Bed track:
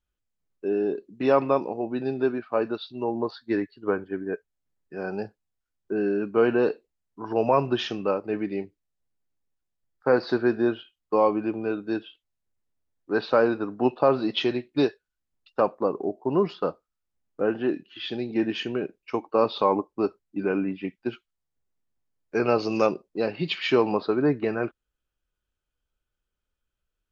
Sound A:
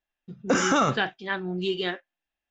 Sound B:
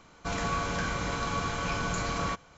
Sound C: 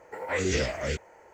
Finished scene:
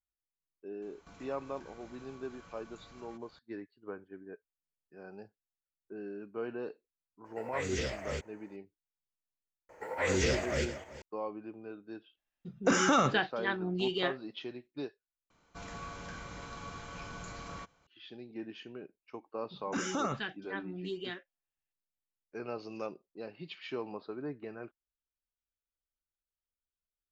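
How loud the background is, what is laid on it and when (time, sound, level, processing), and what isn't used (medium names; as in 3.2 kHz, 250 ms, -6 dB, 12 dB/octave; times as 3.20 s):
bed track -17.5 dB
0.82 s: add B -9.5 dB + compression 16:1, threshold -42 dBFS
7.24 s: add C -8 dB, fades 0.02 s
9.69 s: add C -2.5 dB + backward echo that repeats 192 ms, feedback 44%, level -11 dB
12.17 s: add A -4 dB
15.30 s: replace with B -13.5 dB
19.23 s: add A -11 dB + LFO notch saw up 2.2 Hz 340–5400 Hz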